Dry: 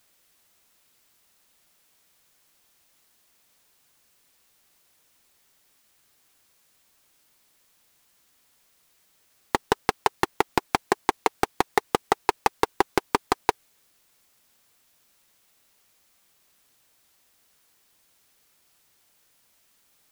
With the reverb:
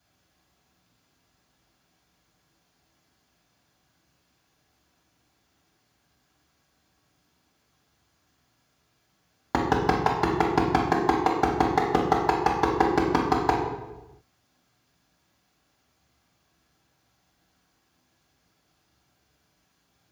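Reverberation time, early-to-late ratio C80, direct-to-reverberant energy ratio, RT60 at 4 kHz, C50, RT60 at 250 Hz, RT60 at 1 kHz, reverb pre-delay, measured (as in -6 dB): 1.0 s, 5.5 dB, -4.0 dB, 0.80 s, 3.0 dB, 1.4 s, 0.95 s, 3 ms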